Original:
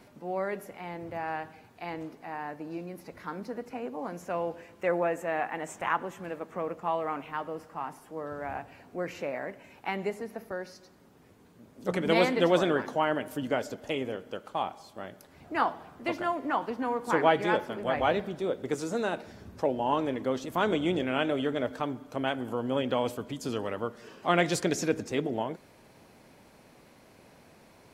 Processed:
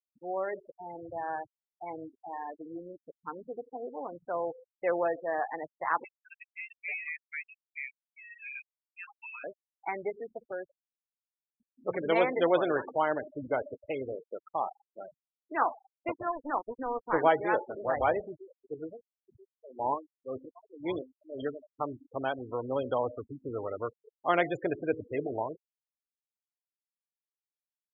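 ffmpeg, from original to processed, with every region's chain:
-filter_complex "[0:a]asettb=1/sr,asplit=3[a][b][c];[a]atrim=end=6.044[d];[b]atrim=start=6.04:end=9.44,asetpts=PTS-STARTPTS,afade=t=in:d=0.004:c=qsin,afade=t=out:st=3.396:d=0.004:c=qsin,highpass=f=670:w=0.5412,highpass=f=670:w=1.3066,aeval=exprs='0.0531*(abs(mod(val(0)/0.0531+3,4)-2)-1)':c=same,lowpass=f=2.7k:t=q:w=0.5098,lowpass=f=2.7k:t=q:w=0.6013,lowpass=f=2.7k:t=q:w=0.9,lowpass=f=2.7k:t=q:w=2.563,afreqshift=-3200[e];[c]atrim=start=9.436[f];[d][e]acrossfade=d=0.004:c1=hsin:c2=qsin[g];[g][f]acrossfade=d=0.004:c1=qsin:c2=hsin,asettb=1/sr,asplit=3[h][i][j];[h]atrim=end=15.934[k];[i]atrim=start=15.93:end=17.28,asetpts=PTS-STARTPTS,afade=t=in:d=0.004:c=qsin,afade=t=out:st=1.346:d=0.004:c=qsin,lowshelf=f=310:g=6.5,aeval=exprs='sgn(val(0))*max(abs(val(0))-0.0178,0)':c=same[l];[j]atrim=start=17.276[m];[k][l]acrossfade=d=0.004:c1=hsin:c2=qsin[n];[n][m]acrossfade=d=0.004:c1=qsin:c2=hsin,asettb=1/sr,asplit=3[o][p][q];[o]atrim=end=18.294[r];[p]atrim=start=18.29:end=21.77,asetpts=PTS-STARTPTS,afade=t=in:d=0.004:c=qsin,afade=t=out:st=3.476:d=0.004:c=qsin,aemphasis=mode=production:type=50fm,aecho=1:1:983:0.15,atrim=end_sample=153468,aeval=exprs='val(0)*pow(10,-23*(0.5-0.5*cos(2*PI*1.9*n/s))/20)':c=same[s];[q]atrim=start=21.766[t];[r][s]acrossfade=d=0.004:c1=hsin:c2=qsin[u];[u][t]acrossfade=d=0.004:c1=qsin:c2=hsin,aemphasis=mode=reproduction:type=75fm,afftfilt=real='re*gte(hypot(re,im),0.0355)':imag='im*gte(hypot(re,im),0.0355)':win_size=1024:overlap=0.75,equalizer=f=200:t=o:w=0.85:g=-15"

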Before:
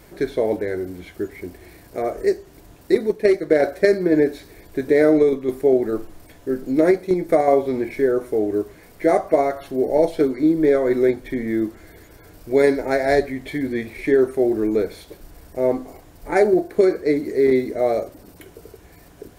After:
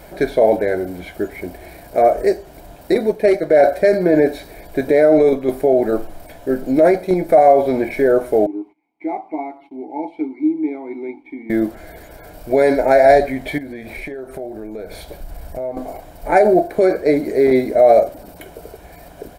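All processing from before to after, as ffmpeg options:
-filter_complex "[0:a]asettb=1/sr,asplit=3[a][b][c];[a]atrim=end=8.464[d];[b]atrim=start=8.46:end=11.5,asetpts=PTS-STARTPTS,afade=t=in:d=0.004:c=qsin,afade=t=out:st=3.036:d=0.004:c=qsin,agate=range=-18dB:threshold=-42dB:ratio=16:release=100:detection=peak,asplit=3[e][f][g];[e]bandpass=f=300:t=q:w=8,volume=0dB[h];[f]bandpass=f=870:t=q:w=8,volume=-6dB[i];[g]bandpass=f=2.24k:t=q:w=8,volume=-9dB[j];[h][i][j]amix=inputs=3:normalize=0,lowshelf=f=200:g=-7.5[k];[c]atrim=start=11.496[l];[d][k]acrossfade=d=0.004:c1=hsin:c2=qsin[m];[m][l]acrossfade=d=0.004:c1=qsin:c2=hsin,asettb=1/sr,asplit=3[n][o][p];[n]atrim=end=13.584[q];[o]atrim=start=13.58:end=15.77,asetpts=PTS-STARTPTS,afade=t=in:d=0.004:c=qsin,afade=t=out:st=2.186:d=0.004:c=qsin,asubboost=boost=2.5:cutoff=180,acompressor=threshold=-33dB:ratio=6:attack=3.2:release=140:knee=1:detection=peak[r];[p]atrim=start=15.766[s];[q][r]acrossfade=d=0.004:c1=hsin:c2=qsin[t];[t][s]acrossfade=d=0.004:c1=qsin:c2=hsin,equalizer=f=100:t=o:w=0.67:g=-7,equalizer=f=630:t=o:w=0.67:g=8,equalizer=f=6.3k:t=o:w=0.67:g=-4,alimiter=limit=-9dB:level=0:latency=1:release=24,aecho=1:1:1.3:0.32,volume=5.5dB"

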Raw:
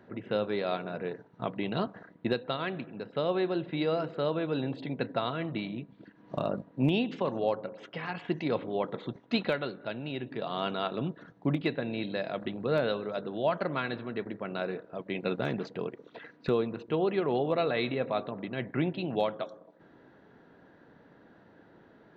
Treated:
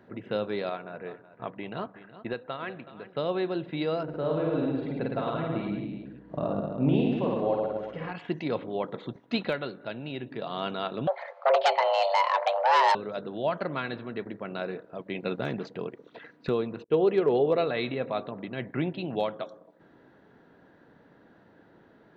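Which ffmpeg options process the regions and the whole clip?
-filter_complex "[0:a]asettb=1/sr,asplit=3[a][b][c];[a]atrim=end=0.694[d];[b]atrim=start=0.69:end=3.17,asetpts=PTS-STARTPTS,afade=t=in:d=0.004:c=qsin,afade=t=out:st=2.476:d=0.004:c=qsin,lowpass=2.4k,equalizer=f=190:w=0.4:g=-6.5,aecho=1:1:373:0.188,atrim=end_sample=109368[e];[c]atrim=start=3.166[f];[d][e]acrossfade=d=0.004:c1=hsin:c2=qsin[g];[g][f]acrossfade=d=0.004:c1=qsin:c2=hsin,asettb=1/sr,asplit=3[h][i][j];[h]atrim=end=4.034[k];[i]atrim=start=4.03:end=8.12,asetpts=PTS-STARTPTS,afade=t=in:d=0.004:c=qsin,afade=t=out:st=4.086:d=0.004:c=qsin,lowpass=f=1.1k:p=1,aeval=exprs='val(0)+0.000501*(sin(2*PI*60*n/s)+sin(2*PI*2*60*n/s)/2+sin(2*PI*3*60*n/s)/3+sin(2*PI*4*60*n/s)/4+sin(2*PI*5*60*n/s)/5)':c=same,aecho=1:1:50|110|182|268.4|372.1:0.794|0.631|0.501|0.398|0.316,atrim=end_sample=180369[l];[j]atrim=start=8.116[m];[k][l]acrossfade=d=0.004:c1=hsin:c2=qsin[n];[n][m]acrossfade=d=0.004:c1=qsin:c2=hsin,asettb=1/sr,asplit=3[o][p][q];[o]atrim=end=11.074[r];[p]atrim=start=11.07:end=12.95,asetpts=PTS-STARTPTS,afade=t=in:d=0.004:c=qsin,afade=t=out:st=1.876:d=0.004:c=qsin,lowpass=3.6k,aeval=exprs='0.15*sin(PI/2*2.24*val(0)/0.15)':c=same,afreqshift=390[s];[q]atrim=start=12.946[t];[r][s]acrossfade=d=0.004:c1=hsin:c2=qsin[u];[u][t]acrossfade=d=0.004:c1=qsin:c2=hsin,asettb=1/sr,asplit=3[v][w][x];[v]atrim=end=16.844[y];[w]atrim=start=16.84:end=17.64,asetpts=PTS-STARTPTS,afade=t=in:d=0.004:c=qsin,afade=t=out:st=0.796:d=0.004:c=qsin,agate=range=-33dB:threshold=-37dB:ratio=3:release=100:detection=peak,equalizer=f=440:t=o:w=0.45:g=9.5,asoftclip=type=hard:threshold=-14.5dB[z];[x]atrim=start=17.636[aa];[y][z]acrossfade=d=0.004:c1=hsin:c2=qsin[ab];[ab][aa]acrossfade=d=0.004:c1=qsin:c2=hsin"

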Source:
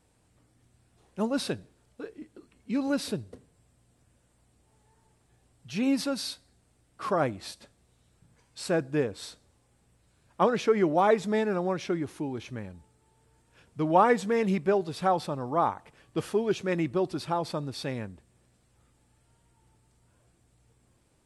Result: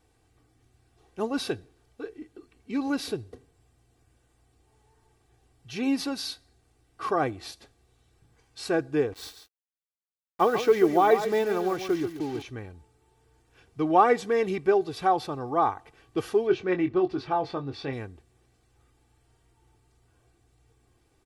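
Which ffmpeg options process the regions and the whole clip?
-filter_complex "[0:a]asettb=1/sr,asplit=3[a][b][c];[a]atrim=end=9.124[d];[b]atrim=start=9.12:end=12.42,asetpts=PTS-STARTPTS,afade=t=in:d=0.004:c=qsin,afade=t=out:st=3.296:d=0.004:c=qsin,acrusher=bits=6:mix=0:aa=0.5,aecho=1:1:140:0.335,atrim=end_sample=145530[e];[c]atrim=start=12.416[f];[d][e]acrossfade=d=0.004:c1=hsin:c2=qsin[g];[g][f]acrossfade=d=0.004:c1=qsin:c2=hsin,asettb=1/sr,asplit=3[h][i][j];[h]atrim=end=16.474[k];[i]atrim=start=16.47:end=17.93,asetpts=PTS-STARTPTS,afade=t=in:d=0.004:c=qsin,afade=t=out:st=1.456:d=0.004:c=qsin,lowpass=3.4k,asplit=2[l][m];[m]adelay=22,volume=-7.5dB[n];[l][n]amix=inputs=2:normalize=0,atrim=end_sample=64386[o];[j]atrim=start=17.926[p];[k][o]acrossfade=d=0.004:c1=hsin:c2=qsin[q];[q][p]acrossfade=d=0.004:c1=qsin:c2=hsin,equalizer=f=8.5k:t=o:w=0.42:g=-6.5,aecho=1:1:2.6:0.6"

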